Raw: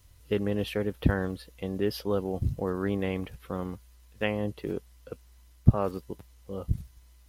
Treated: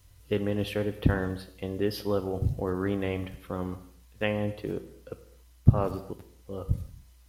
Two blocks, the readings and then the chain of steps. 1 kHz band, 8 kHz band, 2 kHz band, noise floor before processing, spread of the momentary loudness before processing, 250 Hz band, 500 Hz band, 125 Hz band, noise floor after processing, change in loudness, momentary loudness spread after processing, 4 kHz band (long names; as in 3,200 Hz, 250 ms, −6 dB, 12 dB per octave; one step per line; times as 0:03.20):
+0.5 dB, +0.5 dB, +0.5 dB, −56 dBFS, 17 LU, 0.0 dB, +0.5 dB, +1.5 dB, −56 dBFS, +0.5 dB, 18 LU, +0.5 dB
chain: reverb whose tail is shaped and stops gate 310 ms falling, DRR 9.5 dB